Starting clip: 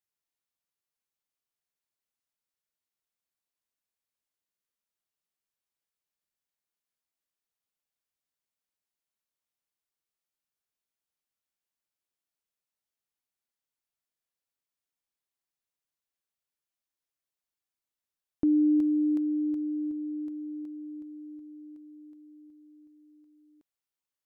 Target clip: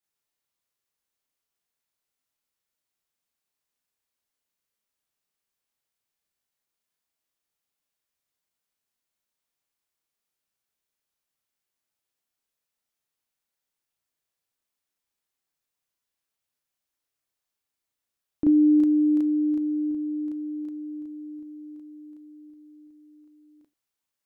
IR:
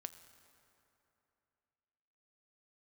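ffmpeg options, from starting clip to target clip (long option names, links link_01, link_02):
-filter_complex "[0:a]asplit=2[link_01][link_02];[1:a]atrim=start_sample=2205,atrim=end_sample=3969,adelay=34[link_03];[link_02][link_03]afir=irnorm=-1:irlink=0,volume=8.5dB[link_04];[link_01][link_04]amix=inputs=2:normalize=0"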